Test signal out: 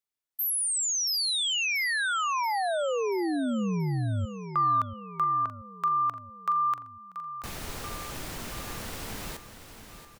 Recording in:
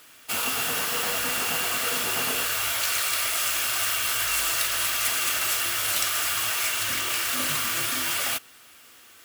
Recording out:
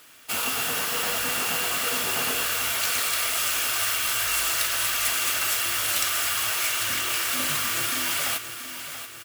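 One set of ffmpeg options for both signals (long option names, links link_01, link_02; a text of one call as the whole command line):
ffmpeg -i in.wav -af "aecho=1:1:682|1364|2046|2728|3410:0.282|0.144|0.0733|0.0374|0.0191" out.wav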